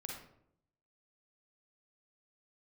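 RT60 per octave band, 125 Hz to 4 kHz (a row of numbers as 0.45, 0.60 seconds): 0.95, 0.85, 0.80, 0.65, 0.50, 0.40 seconds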